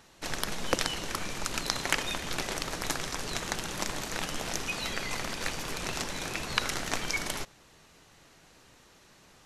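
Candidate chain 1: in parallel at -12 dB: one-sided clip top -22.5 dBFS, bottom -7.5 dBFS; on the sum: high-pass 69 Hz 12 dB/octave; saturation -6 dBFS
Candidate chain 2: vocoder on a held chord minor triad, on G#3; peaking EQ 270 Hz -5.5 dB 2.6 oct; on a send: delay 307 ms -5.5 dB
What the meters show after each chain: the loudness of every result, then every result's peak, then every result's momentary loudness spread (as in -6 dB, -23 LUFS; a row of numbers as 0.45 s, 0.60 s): -31.0 LUFS, -37.5 LUFS; -7.0 dBFS, -16.5 dBFS; 4 LU, 5 LU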